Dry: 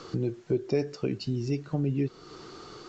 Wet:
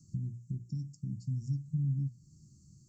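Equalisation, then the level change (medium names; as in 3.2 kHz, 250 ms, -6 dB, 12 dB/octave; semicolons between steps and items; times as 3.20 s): high-pass 49 Hz; inverse Chebyshev band-stop 420–3500 Hz, stop band 50 dB; hum notches 60/120/180/240/300 Hz; 0.0 dB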